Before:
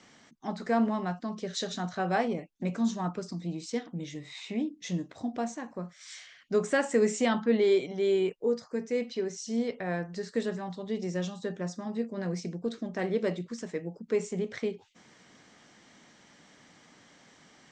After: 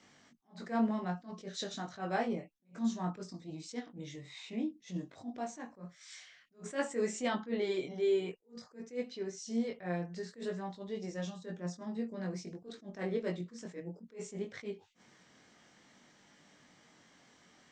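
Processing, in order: chorus 0.55 Hz, delay 20 ms, depth 2.8 ms; attacks held to a fixed rise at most 230 dB/s; trim -2.5 dB

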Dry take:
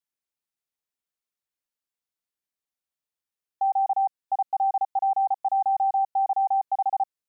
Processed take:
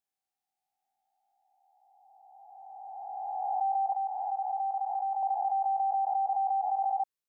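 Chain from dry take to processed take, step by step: reverse spectral sustain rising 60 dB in 2.93 s; 3.92–5.23 s: high-pass 750 Hz 12 dB/octave; trim -6 dB

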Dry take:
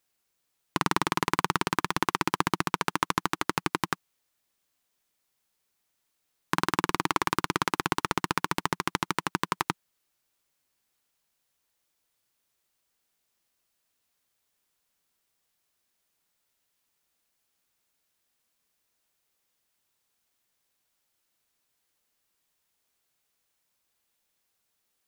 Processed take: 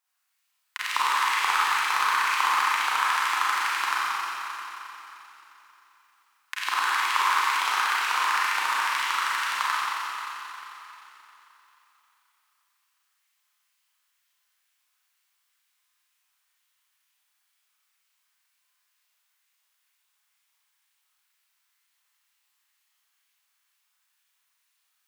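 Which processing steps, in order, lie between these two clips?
LFO high-pass saw up 2.1 Hz 920–2900 Hz; Schroeder reverb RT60 3.4 s, combs from 30 ms, DRR -9 dB; trim -6.5 dB

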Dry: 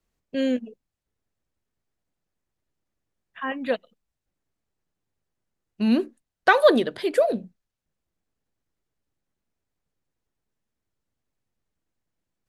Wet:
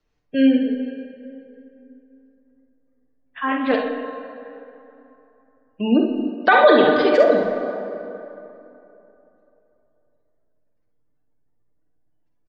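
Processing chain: spectral gate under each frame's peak -30 dB strong; steep low-pass 6 kHz 36 dB/octave; peaking EQ 170 Hz -7.5 dB 0.21 oct; comb 6.7 ms, depth 52%; early reflections 48 ms -6.5 dB, 67 ms -7 dB; plate-style reverb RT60 3.1 s, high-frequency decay 0.55×, DRR 4.5 dB; loudness maximiser +7 dB; 3.48–5.81 s: loudspeaker Doppler distortion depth 0.13 ms; trim -2.5 dB

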